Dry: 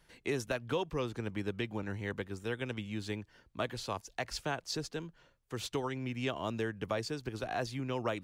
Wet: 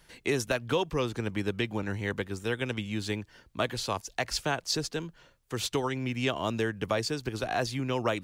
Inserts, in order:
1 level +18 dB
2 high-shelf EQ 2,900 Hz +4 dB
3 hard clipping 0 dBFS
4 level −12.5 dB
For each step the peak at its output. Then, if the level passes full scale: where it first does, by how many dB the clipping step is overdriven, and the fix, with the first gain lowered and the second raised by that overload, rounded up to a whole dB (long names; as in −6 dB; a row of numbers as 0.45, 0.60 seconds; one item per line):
−4.0, −3.0, −3.0, −15.5 dBFS
no step passes full scale